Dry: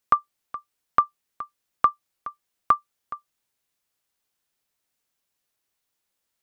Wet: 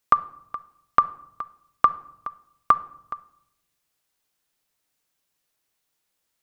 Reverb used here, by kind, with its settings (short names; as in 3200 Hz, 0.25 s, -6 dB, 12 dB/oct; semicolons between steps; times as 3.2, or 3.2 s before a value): shoebox room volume 2000 m³, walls furnished, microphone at 0.54 m; gain +2.5 dB